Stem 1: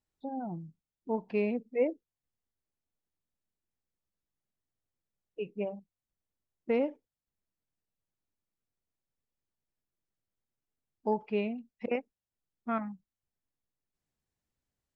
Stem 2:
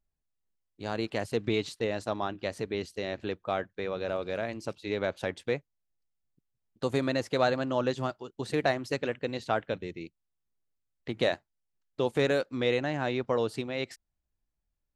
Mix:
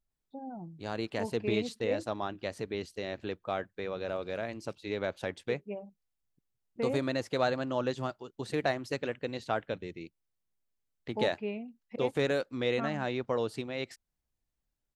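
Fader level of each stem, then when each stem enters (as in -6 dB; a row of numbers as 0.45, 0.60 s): -5.0, -3.0 dB; 0.10, 0.00 s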